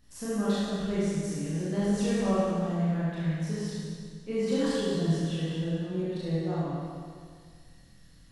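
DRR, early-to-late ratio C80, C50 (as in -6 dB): -10.5 dB, -2.0 dB, -5.0 dB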